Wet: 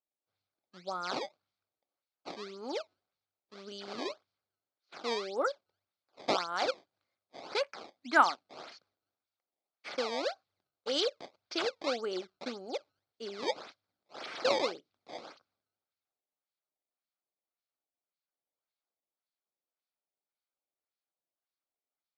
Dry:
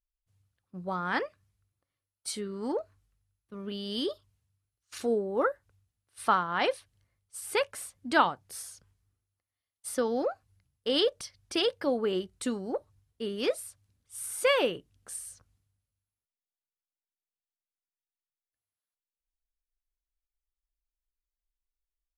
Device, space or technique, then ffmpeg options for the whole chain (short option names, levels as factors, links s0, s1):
circuit-bent sampling toy: -filter_complex "[0:a]asettb=1/sr,asplit=3[s0][s1][s2];[s0]atrim=end=7.634[s3];[s1]atrim=start=7.63:end=8.56,asetpts=PTS-STARTPTS,afade=t=in:d=0.004:c=qsin,afade=t=out:st=0.926:d=0.004:c=qsin,equalizer=f=125:t=o:w=1:g=-7,equalizer=f=250:t=o:w=1:g=7,equalizer=f=500:t=o:w=1:g=-5,equalizer=f=1000:t=o:w=1:g=4,equalizer=f=2000:t=o:w=1:g=9,equalizer=f=4000:t=o:w=1:g=-11[s4];[s2]atrim=start=8.556[s5];[s3][s4]acrossfade=d=0.004:c1=hsin:c2=qsin[s6];[s6][s5]acrossfade=d=0.004:c1=qsin:c2=hsin,acrusher=samples=18:mix=1:aa=0.000001:lfo=1:lforange=28.8:lforate=1.8,highpass=450,equalizer=f=450:t=q:w=4:g=-4,equalizer=f=990:t=q:w=4:g=-7,equalizer=f=1800:t=q:w=4:g=-9,equalizer=f=2800:t=q:w=4:g=-7,equalizer=f=4400:t=q:w=4:g=5,lowpass=f=5100:w=0.5412,lowpass=f=5100:w=1.3066"